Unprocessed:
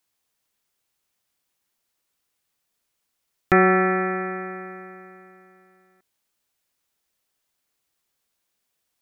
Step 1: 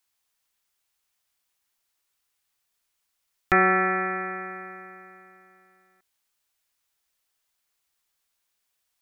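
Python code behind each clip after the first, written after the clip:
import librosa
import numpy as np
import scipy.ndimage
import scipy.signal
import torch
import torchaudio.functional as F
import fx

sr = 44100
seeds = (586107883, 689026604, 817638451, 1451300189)

y = fx.graphic_eq(x, sr, hz=(125, 250, 500), db=(-7, -7, -5))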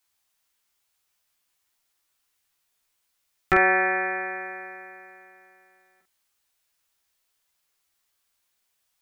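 y = fx.room_early_taps(x, sr, ms=(13, 47), db=(-3.0, -5.5))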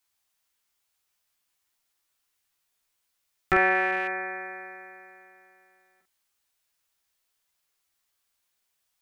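y = fx.rattle_buzz(x, sr, strikes_db=-43.0, level_db=-28.0)
y = y * 10.0 ** (-2.5 / 20.0)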